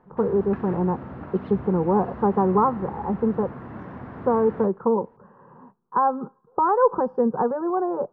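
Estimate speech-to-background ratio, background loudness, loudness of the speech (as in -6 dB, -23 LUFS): 14.5 dB, -38.0 LUFS, -23.5 LUFS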